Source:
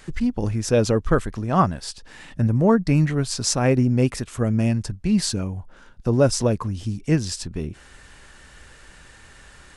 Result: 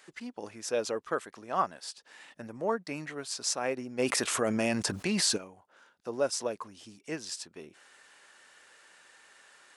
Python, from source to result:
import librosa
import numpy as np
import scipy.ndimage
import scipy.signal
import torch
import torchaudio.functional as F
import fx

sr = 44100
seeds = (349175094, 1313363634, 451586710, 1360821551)

y = scipy.signal.sosfilt(scipy.signal.butter(2, 480.0, 'highpass', fs=sr, output='sos'), x)
y = fx.env_flatten(y, sr, amount_pct=70, at=(3.98, 5.36), fade=0.02)
y = y * librosa.db_to_amplitude(-8.0)